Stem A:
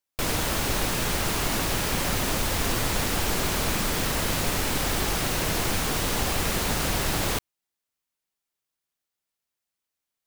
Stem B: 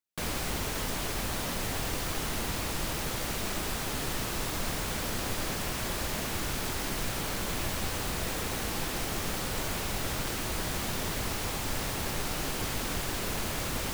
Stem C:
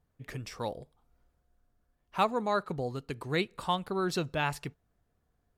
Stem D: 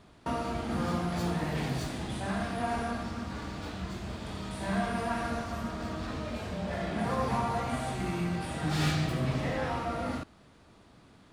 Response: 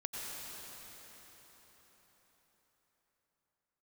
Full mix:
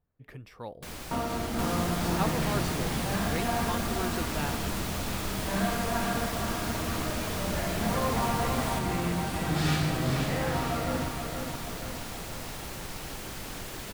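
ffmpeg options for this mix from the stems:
-filter_complex "[0:a]adelay=1400,volume=-11.5dB[link_01];[1:a]adelay=650,volume=-8dB,asplit=2[link_02][link_03];[link_03]volume=-4.5dB[link_04];[2:a]equalizer=frequency=6800:width_type=o:width=1.3:gain=-12.5,volume=-5dB[link_05];[3:a]adelay=850,volume=1dB,asplit=2[link_06][link_07];[link_07]volume=-6.5dB[link_08];[link_04][link_08]amix=inputs=2:normalize=0,aecho=0:1:474|948|1422|1896|2370|2844|3318|3792:1|0.56|0.314|0.176|0.0983|0.0551|0.0308|0.0173[link_09];[link_01][link_02][link_05][link_06][link_09]amix=inputs=5:normalize=0"

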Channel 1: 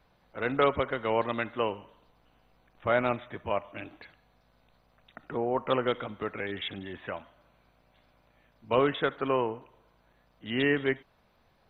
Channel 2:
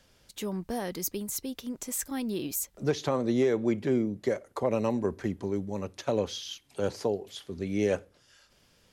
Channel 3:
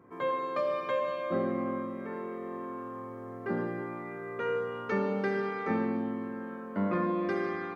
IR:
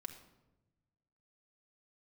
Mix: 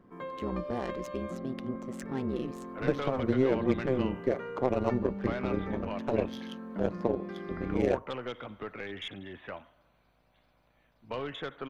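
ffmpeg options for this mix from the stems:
-filter_complex "[0:a]acrossover=split=120|3000[link_01][link_02][link_03];[link_02]acompressor=threshold=-30dB:ratio=3[link_04];[link_01][link_04][link_03]amix=inputs=3:normalize=0,aeval=exprs='(tanh(15.8*val(0)+0.25)-tanh(0.25))/15.8':channel_layout=same,adelay=2400,volume=-3dB[link_05];[1:a]adynamicsmooth=sensitivity=4:basefreq=1200,tremolo=f=130:d=0.974,volume=3dB[link_06];[2:a]equalizer=frequency=190:width=2:gain=11,acompressor=threshold=-31dB:ratio=6,volume=-5.5dB[link_07];[link_05][link_06][link_07]amix=inputs=3:normalize=0"

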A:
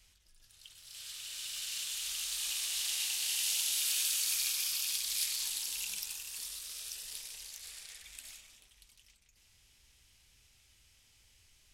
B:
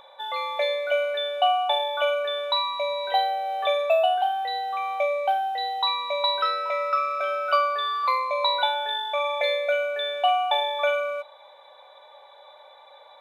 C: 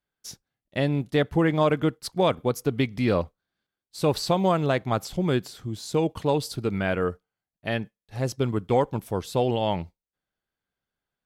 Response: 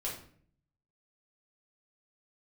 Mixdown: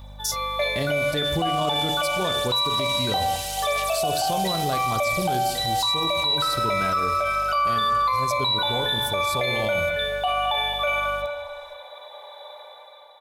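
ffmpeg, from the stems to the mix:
-filter_complex "[0:a]aphaser=in_gain=1:out_gain=1:delay=3.7:decay=0.7:speed=0.79:type=sinusoidal,volume=-5dB,asplit=2[link_01][link_02];[link_02]volume=-10.5dB[link_03];[1:a]dynaudnorm=framelen=170:gausssize=7:maxgain=8.5dB,volume=2dB,asplit=3[link_04][link_05][link_06];[link_05]volume=-8.5dB[link_07];[link_06]volume=-16.5dB[link_08];[2:a]bandreject=frequency=1800:width=12,aeval=exprs='val(0)+0.00447*(sin(2*PI*50*n/s)+sin(2*PI*2*50*n/s)/2+sin(2*PI*3*50*n/s)/3+sin(2*PI*4*50*n/s)/4+sin(2*PI*5*50*n/s)/5)':channel_layout=same,volume=2.5dB,asplit=3[link_09][link_10][link_11];[link_10]volume=-14.5dB[link_12];[link_11]apad=whole_len=582486[link_13];[link_04][link_13]sidechaingate=range=-13dB:threshold=-33dB:ratio=16:detection=peak[link_14];[link_14][link_09]amix=inputs=2:normalize=0,aexciter=amount=5:drive=5.2:freq=3900,acompressor=threshold=-22dB:ratio=2.5,volume=0dB[link_15];[3:a]atrim=start_sample=2205[link_16];[link_03][link_07][link_12]amix=inputs=3:normalize=0[link_17];[link_17][link_16]afir=irnorm=-1:irlink=0[link_18];[link_08]aecho=0:1:218|436|654|872|1090|1308|1526:1|0.48|0.23|0.111|0.0531|0.0255|0.0122[link_19];[link_01][link_15][link_18][link_19]amix=inputs=4:normalize=0,equalizer=frequency=69:width=1.6:gain=9.5,alimiter=limit=-15.5dB:level=0:latency=1:release=25"

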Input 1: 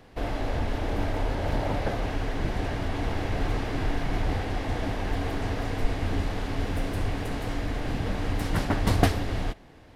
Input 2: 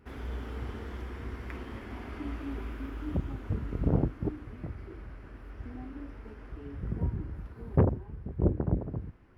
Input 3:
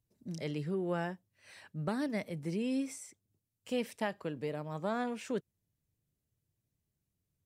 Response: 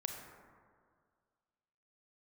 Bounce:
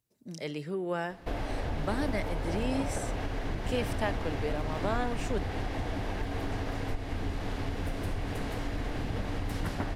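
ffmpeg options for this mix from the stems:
-filter_complex "[0:a]acompressor=threshold=-28dB:ratio=6,adelay=1100,volume=-4dB,asplit=2[link_01][link_02];[link_02]volume=-5.5dB[link_03];[2:a]lowshelf=frequency=190:gain=-11.5,volume=3dB,asplit=2[link_04][link_05];[link_05]volume=-15.5dB[link_06];[3:a]atrim=start_sample=2205[link_07];[link_03][link_06]amix=inputs=2:normalize=0[link_08];[link_08][link_07]afir=irnorm=-1:irlink=0[link_09];[link_01][link_04][link_09]amix=inputs=3:normalize=0"

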